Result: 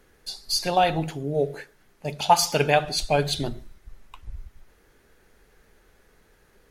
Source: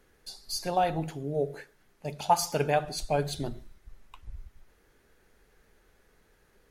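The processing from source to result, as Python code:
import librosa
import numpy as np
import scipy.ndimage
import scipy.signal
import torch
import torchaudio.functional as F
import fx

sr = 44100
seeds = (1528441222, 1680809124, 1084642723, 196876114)

y = fx.dynamic_eq(x, sr, hz=3200.0, q=0.93, threshold_db=-49.0, ratio=4.0, max_db=8)
y = y * 10.0 ** (5.0 / 20.0)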